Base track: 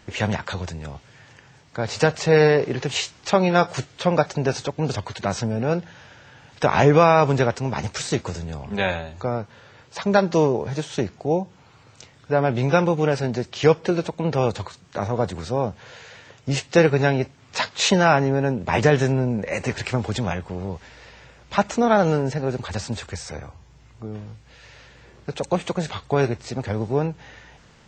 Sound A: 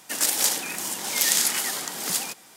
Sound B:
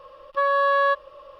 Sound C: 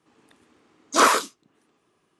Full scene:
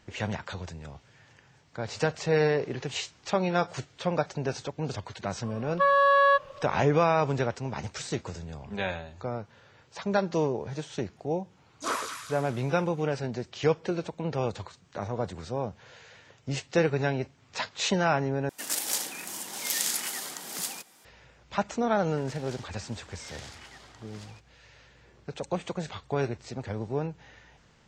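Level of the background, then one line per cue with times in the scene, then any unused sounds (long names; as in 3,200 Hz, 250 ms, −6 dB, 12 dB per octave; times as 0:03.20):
base track −8.5 dB
0:05.43: mix in B −0.5 dB
0:10.88: mix in C −14 dB + delay with a high-pass on its return 206 ms, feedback 45%, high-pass 1,600 Hz, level −4.5 dB
0:18.49: overwrite with A −7.5 dB
0:22.07: mix in A −16.5 dB + high-frequency loss of the air 150 metres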